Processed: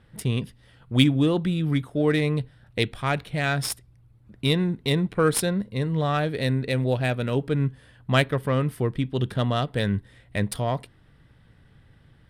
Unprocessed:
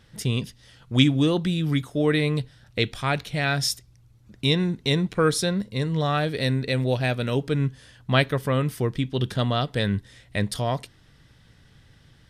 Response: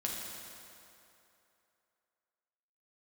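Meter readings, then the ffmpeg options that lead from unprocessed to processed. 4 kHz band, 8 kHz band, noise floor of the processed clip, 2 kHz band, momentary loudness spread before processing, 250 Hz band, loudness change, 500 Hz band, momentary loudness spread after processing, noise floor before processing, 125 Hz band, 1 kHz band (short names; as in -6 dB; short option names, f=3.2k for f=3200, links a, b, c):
-3.0 dB, 0.0 dB, -56 dBFS, -1.0 dB, 7 LU, 0.0 dB, -0.5 dB, 0.0 dB, 8 LU, -56 dBFS, 0.0 dB, -0.5 dB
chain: -af "aexciter=amount=4.4:drive=9.9:freq=8.8k,adynamicsmooth=sensitivity=1:basefreq=2.9k"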